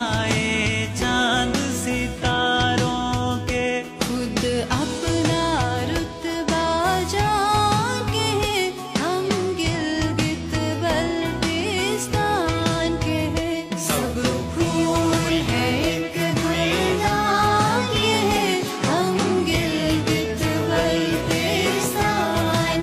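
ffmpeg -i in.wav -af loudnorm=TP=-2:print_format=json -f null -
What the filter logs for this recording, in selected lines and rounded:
"input_i" : "-21.3",
"input_tp" : "-6.1",
"input_lra" : "2.6",
"input_thresh" : "-31.3",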